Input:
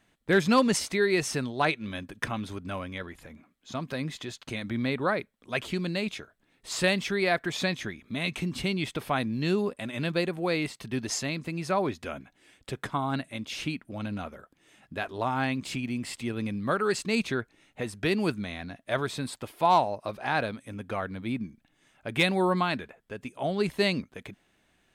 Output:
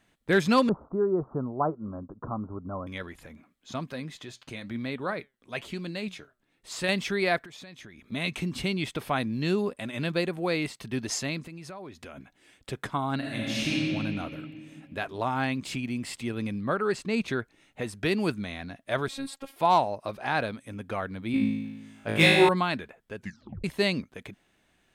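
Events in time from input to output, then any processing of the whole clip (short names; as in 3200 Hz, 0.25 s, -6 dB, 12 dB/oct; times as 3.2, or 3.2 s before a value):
0.69–2.87 steep low-pass 1300 Hz 72 dB/oct
3.88–6.89 flange 1 Hz, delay 2.9 ms, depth 5.4 ms, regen +81%
7.42–8.12 compressor 8:1, threshold -43 dBFS
11.42–12.18 compressor 5:1, threshold -40 dBFS
13.17–13.76 reverb throw, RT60 2.7 s, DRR -6 dB
16.61–17.28 high shelf 3200 Hz -9.5 dB
19.08–19.56 robotiser 273 Hz
21.32–22.49 flutter echo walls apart 3.2 m, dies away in 1.1 s
23.17 tape stop 0.47 s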